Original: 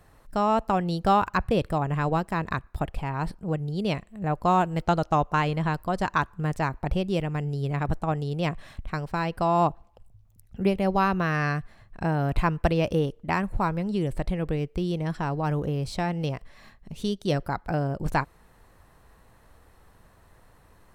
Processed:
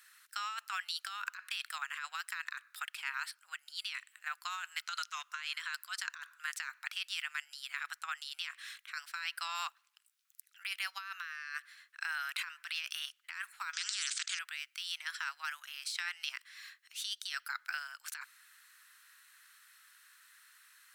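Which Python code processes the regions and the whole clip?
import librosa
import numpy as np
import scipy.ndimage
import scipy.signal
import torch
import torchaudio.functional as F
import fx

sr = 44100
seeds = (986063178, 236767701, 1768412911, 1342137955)

y = fx.chain(x, sr, fx.peak_eq(hz=6100.0, db=3.0, octaves=1.7),
    fx.notch(hz=820.0, q=7.7),
    fx.transient(attack_db=-11, sustain_db=-1), at=(4.86, 5.99))
y = fx.chain(y, sr, fx.steep_lowpass(hz=7100.0, slope=48),
    fx.tilt_eq(slope=3.5),
    fx.spectral_comp(ratio=4.0), at=(13.73, 14.39))
y = scipy.signal.sosfilt(scipy.signal.ellip(4, 1.0, 70, 1400.0, 'highpass', fs=sr, output='sos'), y)
y = fx.high_shelf(y, sr, hz=2800.0, db=6.0)
y = fx.over_compress(y, sr, threshold_db=-38.0, ratio=-1.0)
y = y * 10.0 ** (-1.0 / 20.0)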